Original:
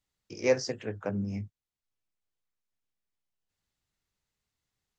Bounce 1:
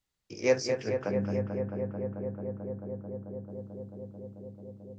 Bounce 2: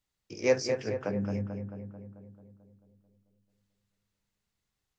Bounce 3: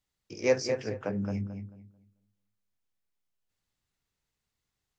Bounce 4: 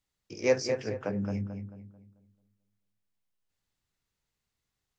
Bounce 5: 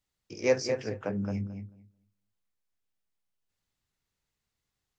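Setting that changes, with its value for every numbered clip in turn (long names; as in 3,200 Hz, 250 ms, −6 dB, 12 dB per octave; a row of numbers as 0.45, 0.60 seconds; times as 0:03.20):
feedback echo with a low-pass in the loop, feedback: 91, 61, 26, 38, 16%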